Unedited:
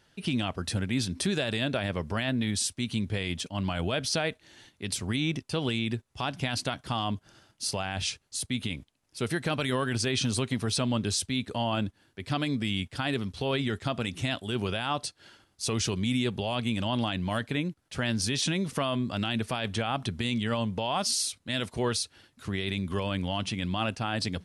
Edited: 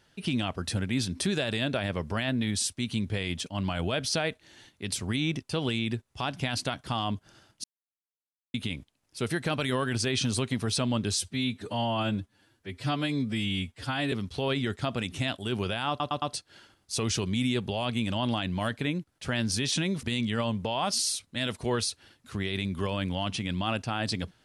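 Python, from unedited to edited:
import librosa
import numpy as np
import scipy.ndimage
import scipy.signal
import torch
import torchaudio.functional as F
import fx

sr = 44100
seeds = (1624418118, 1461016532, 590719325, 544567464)

y = fx.edit(x, sr, fx.silence(start_s=7.64, length_s=0.9),
    fx.stretch_span(start_s=11.21, length_s=1.94, factor=1.5),
    fx.stutter(start_s=14.92, slice_s=0.11, count=4),
    fx.cut(start_s=18.73, length_s=1.43), tone=tone)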